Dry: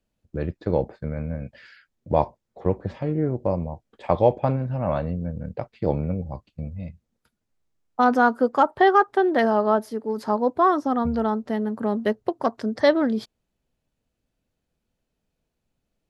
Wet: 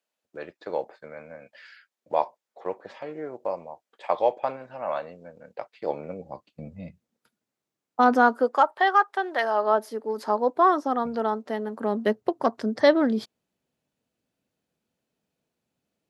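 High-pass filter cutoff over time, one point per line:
0:05.73 650 Hz
0:06.80 190 Hz
0:08.18 190 Hz
0:08.76 780 Hz
0:09.43 780 Hz
0:09.84 340 Hz
0:11.74 340 Hz
0:12.16 150 Hz

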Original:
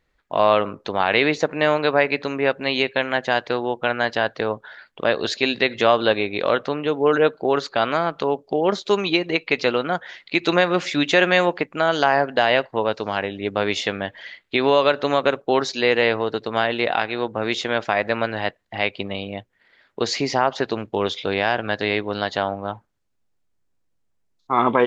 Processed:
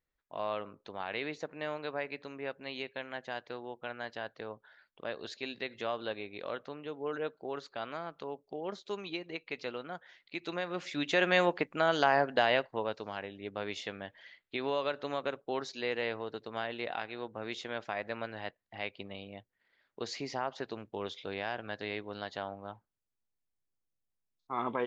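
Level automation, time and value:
0:10.58 −19 dB
0:11.42 −8.5 dB
0:12.38 −8.5 dB
0:13.18 −16 dB

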